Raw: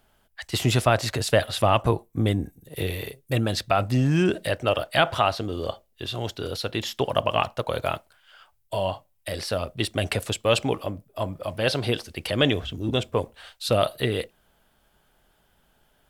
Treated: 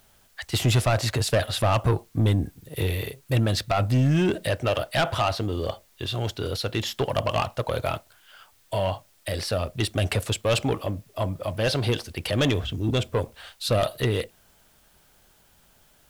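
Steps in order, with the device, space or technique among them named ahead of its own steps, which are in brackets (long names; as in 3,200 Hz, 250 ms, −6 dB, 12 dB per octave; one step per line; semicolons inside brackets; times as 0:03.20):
open-reel tape (soft clipping −18 dBFS, distortion −11 dB; parametric band 100 Hz +4.5 dB 1.12 octaves; white noise bed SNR 36 dB)
level +1.5 dB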